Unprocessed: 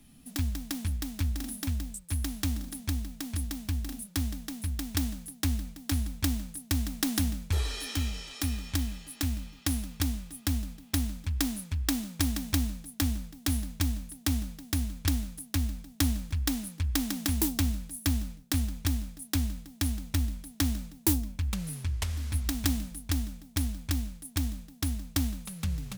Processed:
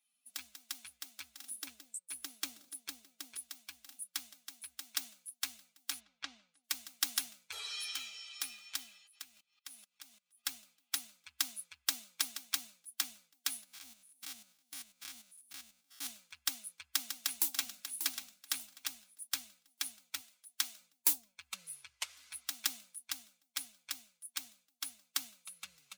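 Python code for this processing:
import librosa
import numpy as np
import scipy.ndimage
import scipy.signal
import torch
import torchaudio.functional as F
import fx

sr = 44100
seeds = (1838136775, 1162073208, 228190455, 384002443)

y = fx.peak_eq(x, sr, hz=360.0, db=12.0, octaves=0.77, at=(1.51, 3.37))
y = fx.air_absorb(y, sr, metres=130.0, at=(5.99, 6.63), fade=0.02)
y = fx.level_steps(y, sr, step_db=18, at=(9.06, 10.42), fade=0.02)
y = fx.spec_steps(y, sr, hold_ms=100, at=(13.64, 16.07))
y = fx.echo_throw(y, sr, start_s=16.95, length_s=1.02, ms=590, feedback_pct=35, wet_db=-6.0)
y = fx.highpass(y, sr, hz=380.0, slope=6, at=(20.21, 20.81))
y = fx.bin_expand(y, sr, power=1.5)
y = scipy.signal.sosfilt(scipy.signal.butter(2, 1300.0, 'highpass', fs=sr, output='sos'), y)
y = fx.notch(y, sr, hz=1800.0, q=9.3)
y = y * librosa.db_to_amplitude(1.0)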